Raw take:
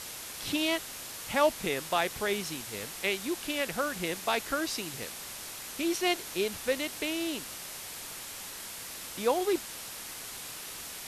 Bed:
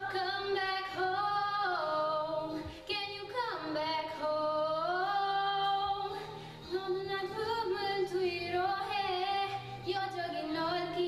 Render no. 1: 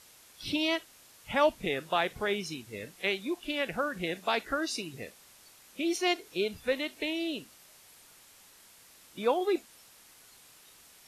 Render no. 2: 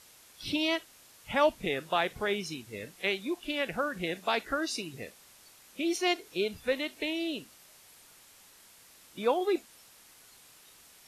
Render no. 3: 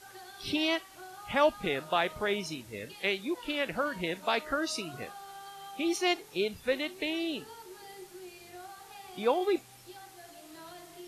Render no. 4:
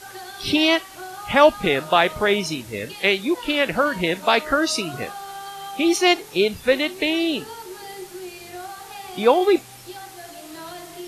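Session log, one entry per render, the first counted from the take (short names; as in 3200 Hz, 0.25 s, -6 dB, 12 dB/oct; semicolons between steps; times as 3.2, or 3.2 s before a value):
noise print and reduce 15 dB
nothing audible
add bed -15 dB
gain +11.5 dB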